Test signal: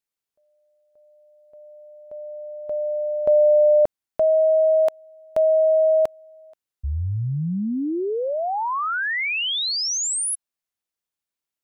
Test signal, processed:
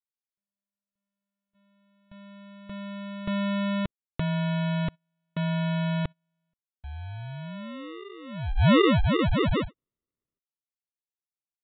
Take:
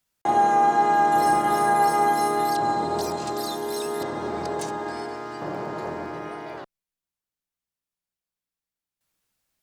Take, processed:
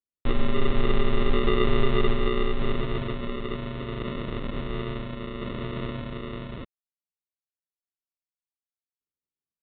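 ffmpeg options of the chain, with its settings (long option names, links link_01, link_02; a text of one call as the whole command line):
ffmpeg -i in.wav -af "agate=range=-23dB:threshold=-45dB:ratio=16:release=68:detection=peak,lowshelf=frequency=690:width_type=q:width=3:gain=-12,aresample=8000,acrusher=samples=10:mix=1:aa=0.000001,aresample=44100" out.wav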